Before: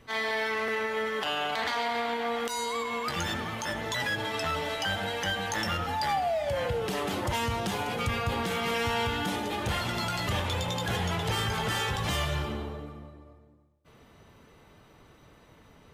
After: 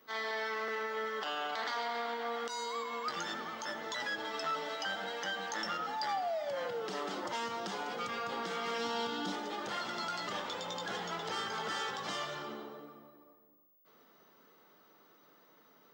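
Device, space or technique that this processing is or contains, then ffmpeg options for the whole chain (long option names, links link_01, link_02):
old television with a line whistle: -filter_complex "[0:a]asettb=1/sr,asplit=3[link_01][link_02][link_03];[link_01]atrim=end=8.784[link_04];[link_02]atrim=start=8.78:end=9.32,asetpts=PTS-STARTPTS,afade=type=in:duration=0.004:curve=qsin,afade=type=out:start_time=0.536:duration=0.004:curve=qsin,equalizer=frequency=250:width_type=o:width=1:gain=6,equalizer=frequency=2000:width_type=o:width=1:gain=-6,equalizer=frequency=4000:width_type=o:width=1:gain=5[link_05];[link_03]atrim=start=9.316[link_06];[link_04][link_05]acrossfade=duration=0.004:curve1=hsin:curve2=qsin[link_07];[link_07][link_06]acrossfade=duration=0.004:curve1=qsin:curve2=hsin,highpass=frequency=210:width=0.5412,highpass=frequency=210:width=1.3066,equalizer=frequency=240:width_type=q:width=4:gain=-3,equalizer=frequency=1300:width_type=q:width=4:gain=5,equalizer=frequency=2500:width_type=q:width=4:gain=-6,equalizer=frequency=5100:width_type=q:width=4:gain=4,lowpass=frequency=7200:width=0.5412,lowpass=frequency=7200:width=1.3066,aeval=exprs='val(0)+0.00112*sin(2*PI*15625*n/s)':channel_layout=same,volume=-7dB"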